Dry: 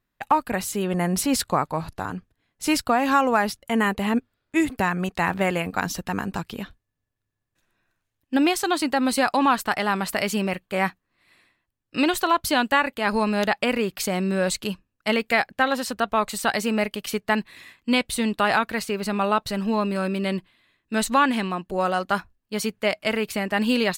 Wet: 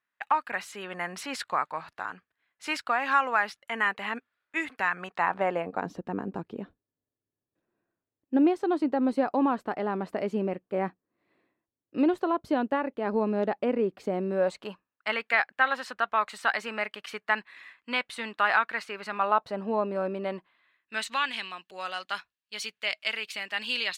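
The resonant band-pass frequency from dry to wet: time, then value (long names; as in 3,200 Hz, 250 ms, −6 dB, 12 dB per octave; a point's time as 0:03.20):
resonant band-pass, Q 1.2
0:04.90 1,700 Hz
0:05.98 380 Hz
0:14.07 380 Hz
0:15.08 1,500 Hz
0:19.10 1,500 Hz
0:19.59 600 Hz
0:20.13 600 Hz
0:21.22 3,200 Hz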